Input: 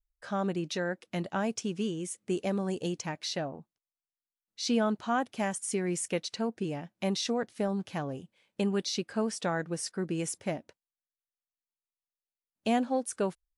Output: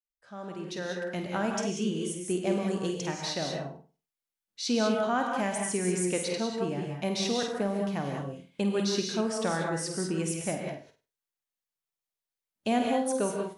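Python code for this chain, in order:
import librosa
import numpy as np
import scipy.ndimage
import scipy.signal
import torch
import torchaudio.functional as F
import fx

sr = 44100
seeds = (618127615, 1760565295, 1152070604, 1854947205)

y = fx.fade_in_head(x, sr, length_s=1.28)
y = fx.room_flutter(y, sr, wall_m=8.5, rt60_s=0.33)
y = fx.rev_gated(y, sr, seeds[0], gate_ms=220, shape='rising', drr_db=1.5)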